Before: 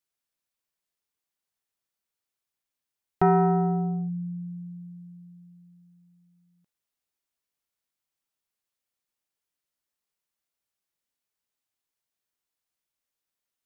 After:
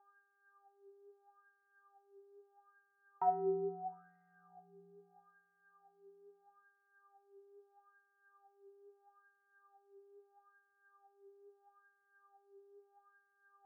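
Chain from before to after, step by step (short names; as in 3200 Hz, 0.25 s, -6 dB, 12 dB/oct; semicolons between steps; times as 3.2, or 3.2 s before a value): spring tank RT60 3.3 s, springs 58 ms, chirp 55 ms, DRR 16 dB; buzz 400 Hz, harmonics 4, -53 dBFS -5 dB/oct; wah 0.77 Hz 360–2000 Hz, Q 9.5; gain -3 dB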